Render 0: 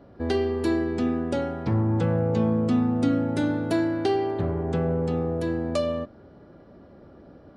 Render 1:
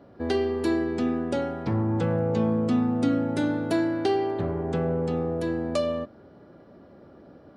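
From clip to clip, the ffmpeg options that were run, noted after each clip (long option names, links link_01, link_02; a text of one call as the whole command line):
ffmpeg -i in.wav -af "highpass=frequency=120:poles=1" out.wav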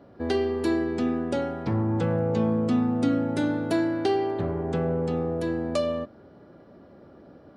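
ffmpeg -i in.wav -af anull out.wav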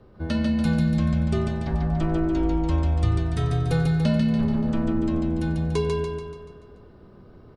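ffmpeg -i in.wav -filter_complex "[0:a]afreqshift=-170,asplit=2[link_01][link_02];[link_02]aecho=0:1:144|288|432|576|720|864|1008:0.668|0.348|0.181|0.094|0.0489|0.0254|0.0132[link_03];[link_01][link_03]amix=inputs=2:normalize=0" out.wav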